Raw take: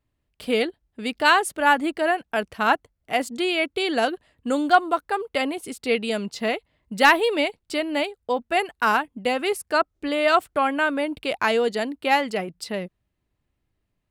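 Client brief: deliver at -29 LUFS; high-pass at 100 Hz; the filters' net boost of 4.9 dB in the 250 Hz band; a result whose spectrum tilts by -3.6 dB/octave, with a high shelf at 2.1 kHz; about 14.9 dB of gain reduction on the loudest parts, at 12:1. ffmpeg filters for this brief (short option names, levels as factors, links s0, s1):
-af "highpass=100,equalizer=f=250:t=o:g=6,highshelf=f=2100:g=3.5,acompressor=threshold=0.0631:ratio=12,volume=1.06"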